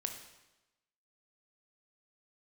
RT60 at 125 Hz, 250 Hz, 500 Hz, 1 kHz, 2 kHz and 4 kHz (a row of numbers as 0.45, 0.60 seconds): 1.0, 1.0, 1.0, 1.0, 0.95, 0.95 seconds